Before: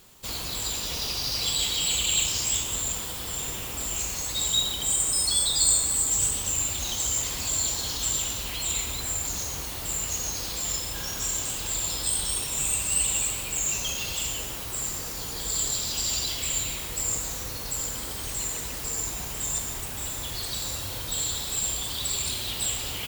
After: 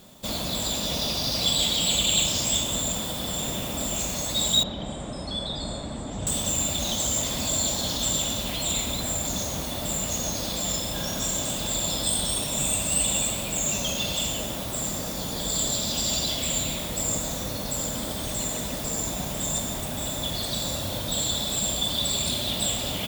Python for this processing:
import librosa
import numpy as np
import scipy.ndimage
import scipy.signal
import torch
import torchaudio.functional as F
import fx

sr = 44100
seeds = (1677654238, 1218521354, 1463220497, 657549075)

y = fx.spacing_loss(x, sr, db_at_10k=31, at=(4.63, 6.27))
y = fx.small_body(y, sr, hz=(210.0, 590.0, 3500.0), ring_ms=20, db=13)